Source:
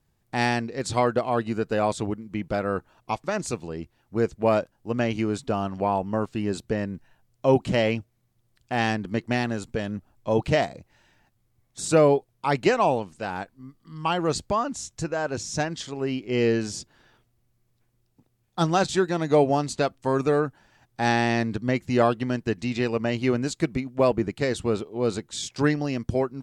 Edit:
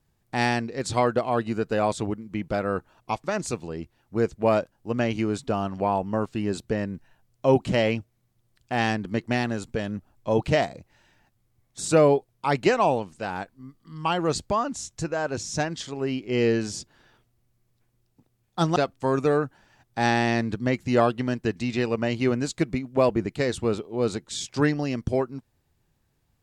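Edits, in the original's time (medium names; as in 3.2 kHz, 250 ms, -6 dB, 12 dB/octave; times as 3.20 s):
18.76–19.78 s: delete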